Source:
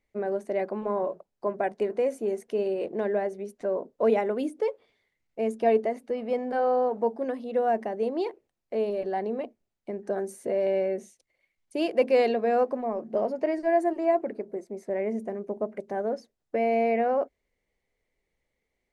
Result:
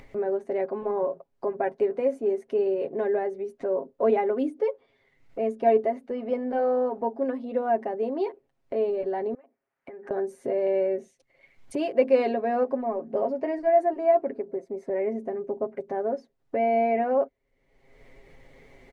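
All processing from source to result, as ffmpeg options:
-filter_complex "[0:a]asettb=1/sr,asplit=3[a][b][c];[a]atrim=end=9.344[d];[b]atrim=start=9.34:end=10.11,asetpts=PTS-STARTPTS,afade=t=in:d=0.004:c=qsin,afade=t=out:st=0.766:d=0.004:c=qsin,highpass=f=1.4k:p=1,highshelf=f=2.6k:t=q:w=1.5:g=-12,acompressor=threshold=-55dB:ratio=6:attack=3.2:release=140:knee=1:detection=peak[e];[c]atrim=start=10.106[f];[d][e]acrossfade=d=0.004:c1=hsin:c2=qsin[g];[g][f]acrossfade=d=0.004:c1=qsin:c2=hsin,lowpass=f=1.7k:p=1,aecho=1:1:7.4:0.67,acompressor=mode=upward:threshold=-29dB:ratio=2.5"

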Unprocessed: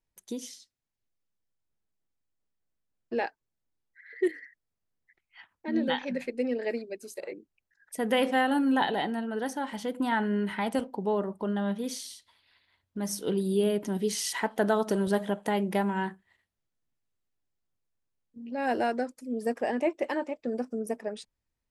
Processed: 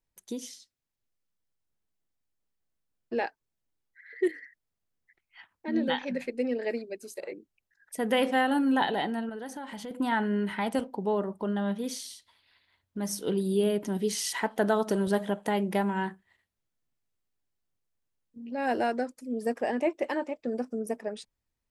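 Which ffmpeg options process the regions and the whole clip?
-filter_complex "[0:a]asettb=1/sr,asplit=3[a][b][c];[a]atrim=end=9.294[d];[b]atrim=start=9.29:end=9.91,asetpts=PTS-STARTPTS,afade=t=in:d=0.004:c=qsin,afade=t=out:st=0.616:d=0.004:c=qsin,bandreject=f=5.6k:w=15,acompressor=threshold=-36dB:ratio=4:attack=3.2:release=140:knee=1:detection=peak[e];[c]atrim=start=9.906[f];[d][e]acrossfade=d=0.004:c1=hsin:c2=qsin[g];[g][f]acrossfade=d=0.004:c1=qsin:c2=hsin"

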